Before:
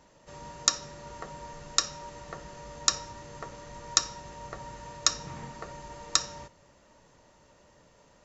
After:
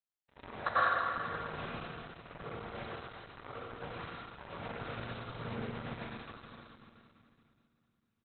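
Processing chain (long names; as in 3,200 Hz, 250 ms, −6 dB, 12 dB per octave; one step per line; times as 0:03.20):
reversed piece by piece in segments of 39 ms
dead-zone distortion −41 dBFS
downward compressor 8 to 1, threshold −46 dBFS, peak gain reduction 27 dB
far-end echo of a speakerphone 110 ms, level −25 dB
dynamic equaliser 4,000 Hz, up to −5 dB, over −60 dBFS, Q 0.9
gain on a spectral selection 0:00.50–0:00.94, 500–2,000 Hz +12 dB
output level in coarse steps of 20 dB
Butterworth low-pass 6,600 Hz 36 dB per octave
convolution reverb RT60 2.5 s, pre-delay 88 ms, DRR −9.5 dB
level +12.5 dB
Opus 8 kbit/s 48,000 Hz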